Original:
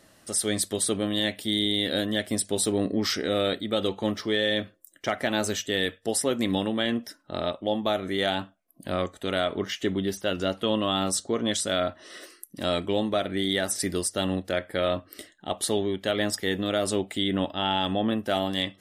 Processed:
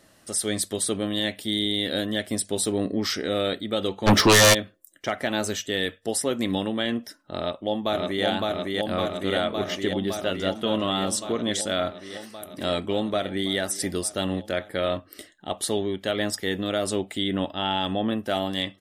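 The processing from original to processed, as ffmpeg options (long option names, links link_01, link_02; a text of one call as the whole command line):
ffmpeg -i in.wav -filter_complex "[0:a]asplit=3[link_01][link_02][link_03];[link_01]afade=type=out:start_time=4.06:duration=0.02[link_04];[link_02]aeval=exprs='0.266*sin(PI/2*5.62*val(0)/0.266)':channel_layout=same,afade=type=in:start_time=4.06:duration=0.02,afade=type=out:start_time=4.53:duration=0.02[link_05];[link_03]afade=type=in:start_time=4.53:duration=0.02[link_06];[link_04][link_05][link_06]amix=inputs=3:normalize=0,asplit=2[link_07][link_08];[link_08]afade=type=in:start_time=7.36:duration=0.01,afade=type=out:start_time=8.25:duration=0.01,aecho=0:1:560|1120|1680|2240|2800|3360|3920|4480|5040|5600|6160|6720:0.841395|0.673116|0.538493|0.430794|0.344635|0.275708|0.220567|0.176453|0.141163|0.11293|0.0903441|0.0722753[link_09];[link_07][link_09]amix=inputs=2:normalize=0,asplit=2[link_10][link_11];[link_11]afade=type=in:start_time=10.15:duration=0.01,afade=type=out:start_time=10.92:duration=0.01,aecho=0:1:400|800:0.16788|0.016788[link_12];[link_10][link_12]amix=inputs=2:normalize=0" out.wav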